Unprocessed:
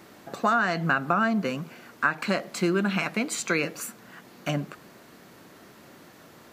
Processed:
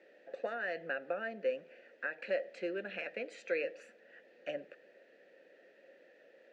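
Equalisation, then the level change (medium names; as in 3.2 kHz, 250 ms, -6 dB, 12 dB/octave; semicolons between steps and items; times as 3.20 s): vowel filter e; band-pass 220–6600 Hz; peaking EQ 3.1 kHz -2 dB; +1.0 dB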